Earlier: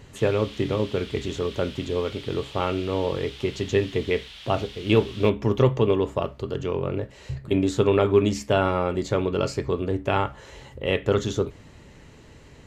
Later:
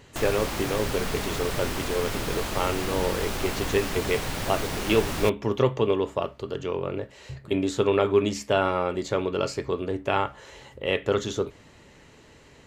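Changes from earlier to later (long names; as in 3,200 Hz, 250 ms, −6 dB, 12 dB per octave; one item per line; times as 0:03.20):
speech: add low-shelf EQ 220 Hz −9 dB
background: remove resonant band-pass 3,300 Hz, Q 3.9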